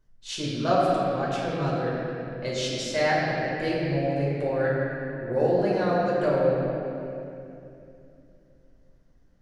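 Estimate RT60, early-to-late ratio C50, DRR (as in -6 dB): 2.7 s, -2.5 dB, -7.0 dB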